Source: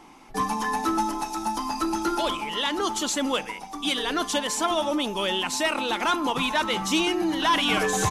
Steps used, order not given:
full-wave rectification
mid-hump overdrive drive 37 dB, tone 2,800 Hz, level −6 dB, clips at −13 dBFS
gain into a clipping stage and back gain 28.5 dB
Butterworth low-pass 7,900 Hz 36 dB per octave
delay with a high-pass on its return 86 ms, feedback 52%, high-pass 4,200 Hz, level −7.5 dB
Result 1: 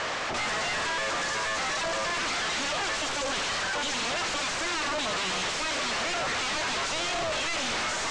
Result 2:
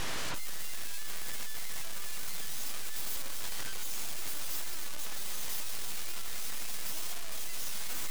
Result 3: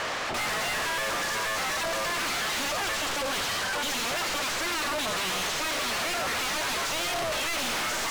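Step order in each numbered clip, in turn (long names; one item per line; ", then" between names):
delay with a high-pass on its return, then full-wave rectification, then mid-hump overdrive, then gain into a clipping stage and back, then Butterworth low-pass
Butterworth low-pass, then mid-hump overdrive, then full-wave rectification, then delay with a high-pass on its return, then gain into a clipping stage and back
full-wave rectification, then delay with a high-pass on its return, then mid-hump overdrive, then Butterworth low-pass, then gain into a clipping stage and back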